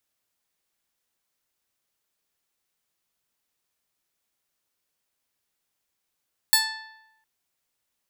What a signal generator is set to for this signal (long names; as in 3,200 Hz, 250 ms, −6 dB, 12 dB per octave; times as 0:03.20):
Karplus-Strong string A5, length 0.71 s, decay 0.95 s, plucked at 0.29, bright